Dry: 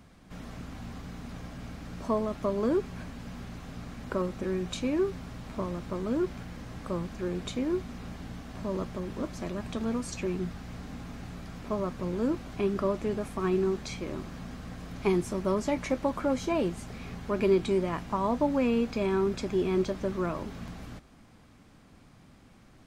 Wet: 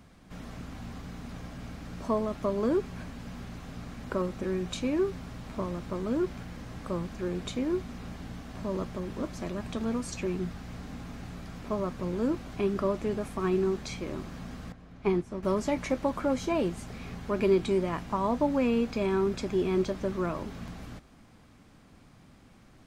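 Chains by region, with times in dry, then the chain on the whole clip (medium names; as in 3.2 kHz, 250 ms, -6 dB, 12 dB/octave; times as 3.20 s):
14.72–15.43 s: low-pass 2.5 kHz 6 dB/octave + upward expansion, over -40 dBFS
whole clip: none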